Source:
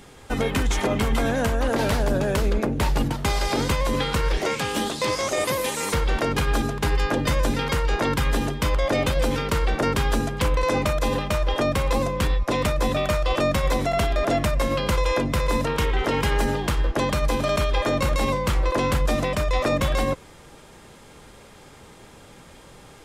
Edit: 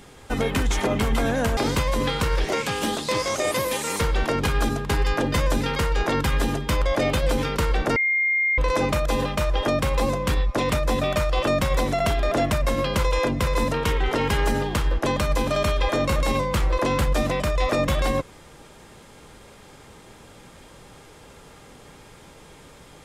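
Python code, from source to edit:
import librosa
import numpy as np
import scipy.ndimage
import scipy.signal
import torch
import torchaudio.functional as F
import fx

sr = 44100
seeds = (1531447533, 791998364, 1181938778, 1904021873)

y = fx.edit(x, sr, fx.cut(start_s=1.57, length_s=1.93),
    fx.bleep(start_s=9.89, length_s=0.62, hz=2120.0, db=-18.5), tone=tone)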